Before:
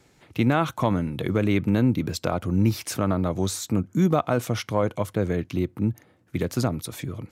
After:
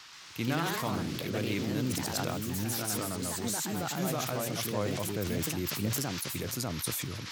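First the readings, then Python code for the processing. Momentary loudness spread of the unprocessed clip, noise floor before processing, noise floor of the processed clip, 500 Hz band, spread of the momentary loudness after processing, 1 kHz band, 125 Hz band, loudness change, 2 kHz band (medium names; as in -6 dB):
7 LU, -60 dBFS, -43 dBFS, -9.0 dB, 3 LU, -7.5 dB, -10.0 dB, -7.5 dB, -3.5 dB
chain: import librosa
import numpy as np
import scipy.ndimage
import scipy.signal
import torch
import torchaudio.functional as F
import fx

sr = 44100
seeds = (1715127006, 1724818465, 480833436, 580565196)

y = scipy.signal.lfilter([1.0, -0.8], [1.0], x)
y = fx.rider(y, sr, range_db=4, speed_s=0.5)
y = fx.dmg_noise_band(y, sr, seeds[0], low_hz=880.0, high_hz=5800.0, level_db=-52.0)
y = fx.echo_pitch(y, sr, ms=129, semitones=2, count=3, db_per_echo=-3.0)
y = fx.sustainer(y, sr, db_per_s=21.0)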